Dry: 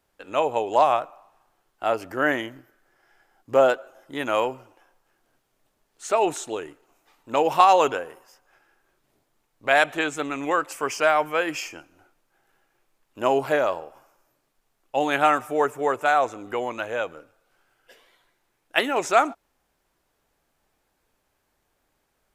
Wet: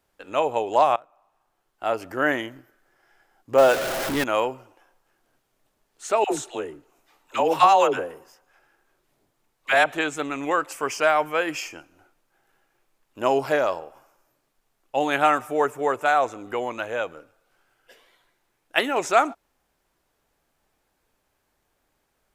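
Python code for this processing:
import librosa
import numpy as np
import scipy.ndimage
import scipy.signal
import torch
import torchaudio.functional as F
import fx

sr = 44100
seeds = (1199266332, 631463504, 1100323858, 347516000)

y = fx.zero_step(x, sr, step_db=-21.5, at=(3.58, 4.24))
y = fx.dispersion(y, sr, late='lows', ms=83.0, hz=590.0, at=(6.24, 9.86))
y = fx.peak_eq(y, sr, hz=5200.0, db=11.5, octaves=0.23, at=(13.27, 13.79))
y = fx.edit(y, sr, fx.fade_in_from(start_s=0.96, length_s=1.11, floor_db=-21.0), tone=tone)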